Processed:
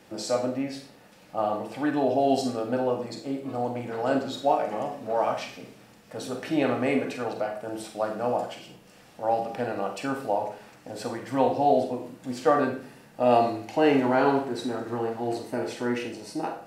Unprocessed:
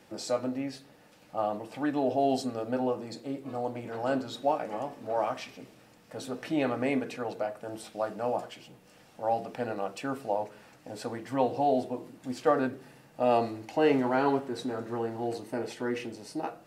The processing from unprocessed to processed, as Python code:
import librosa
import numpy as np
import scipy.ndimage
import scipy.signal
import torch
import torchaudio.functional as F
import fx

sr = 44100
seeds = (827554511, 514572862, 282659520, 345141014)

y = fx.rev_schroeder(x, sr, rt60_s=0.44, comb_ms=33, drr_db=4.5)
y = y * 10.0 ** (3.0 / 20.0)